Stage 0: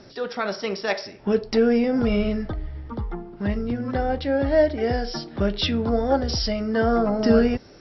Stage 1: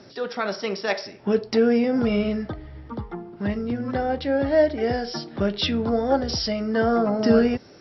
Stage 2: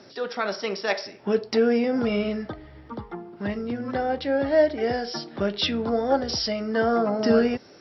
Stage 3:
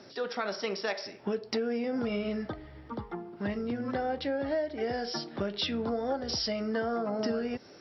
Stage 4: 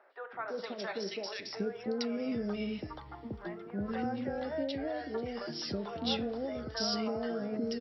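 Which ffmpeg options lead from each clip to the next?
-af "highpass=94"
-af "lowshelf=f=160:g=-9.5"
-af "acompressor=threshold=0.0562:ratio=12,volume=0.75"
-filter_complex "[0:a]acrossover=split=600|1900[s0][s1][s2];[s0]adelay=330[s3];[s2]adelay=480[s4];[s3][s1][s4]amix=inputs=3:normalize=0,volume=0.794"

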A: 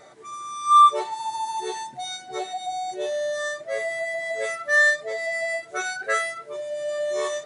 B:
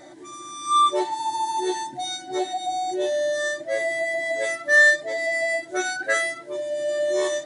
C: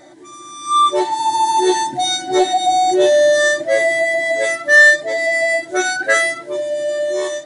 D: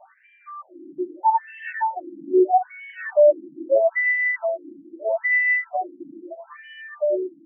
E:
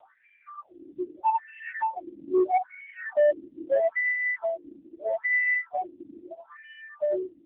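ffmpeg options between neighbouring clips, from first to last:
-af "superequalizer=6b=3.98:7b=0.355:10b=0.398:12b=0.631,volume=1.41"
-filter_complex "[0:a]dynaudnorm=f=300:g=7:m=4.22,asplit=2[s0][s1];[s1]asoftclip=type=tanh:threshold=0.316,volume=0.355[s2];[s0][s2]amix=inputs=2:normalize=0,volume=0.891"
-af "afftfilt=real='re*between(b*sr/1024,240*pow(2300/240,0.5+0.5*sin(2*PI*0.78*pts/sr))/1.41,240*pow(2300/240,0.5+0.5*sin(2*PI*0.78*pts/sr))*1.41)':imag='im*between(b*sr/1024,240*pow(2300/240,0.5+0.5*sin(2*PI*0.78*pts/sr))/1.41,240*pow(2300/240,0.5+0.5*sin(2*PI*0.78*pts/sr))*1.41)':win_size=1024:overlap=0.75"
-af "asoftclip=type=tanh:threshold=0.266,volume=0.708" -ar 8000 -c:a libopencore_amrnb -b:a 6700

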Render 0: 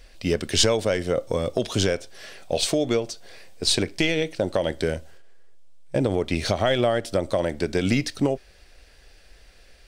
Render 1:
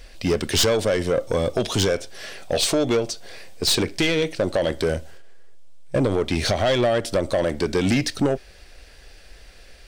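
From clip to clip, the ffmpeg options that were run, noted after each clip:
-af "asoftclip=type=tanh:threshold=0.106,volume=1.88"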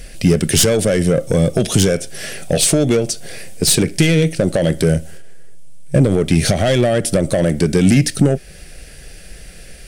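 -filter_complex "[0:a]equalizer=f=160:t=o:w=0.67:g=12,equalizer=f=1000:t=o:w=0.67:g=-10,equalizer=f=4000:t=o:w=0.67:g=-5,equalizer=f=10000:t=o:w=0.67:g=11,asplit=2[s0][s1];[s1]acompressor=threshold=0.0501:ratio=6,volume=1.12[s2];[s0][s2]amix=inputs=2:normalize=0,volume=1.33"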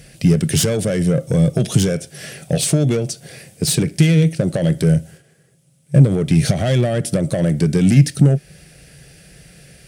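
-af "highpass=71,equalizer=f=140:t=o:w=0.75:g=10.5,volume=0.531"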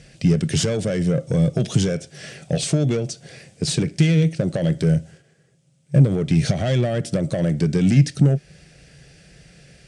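-af "lowpass=f=7800:w=0.5412,lowpass=f=7800:w=1.3066,volume=0.668"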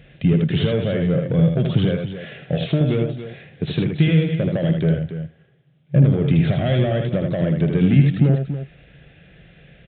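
-filter_complex "[0:a]asplit=2[s0][s1];[s1]aecho=0:1:78.72|282.8:0.562|0.282[s2];[s0][s2]amix=inputs=2:normalize=0,aresample=8000,aresample=44100"

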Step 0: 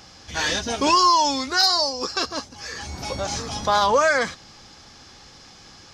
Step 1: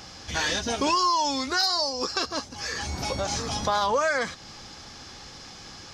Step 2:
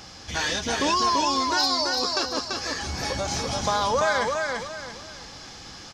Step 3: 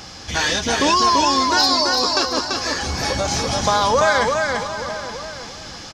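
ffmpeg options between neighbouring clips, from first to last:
-af "acompressor=threshold=0.0282:ratio=2,volume=1.41"
-af "aecho=1:1:338|676|1014|1352:0.668|0.221|0.0728|0.024"
-filter_complex "[0:a]asplit=2[s0][s1];[s1]adelay=874.6,volume=0.251,highshelf=f=4000:g=-19.7[s2];[s0][s2]amix=inputs=2:normalize=0,volume=2.11"

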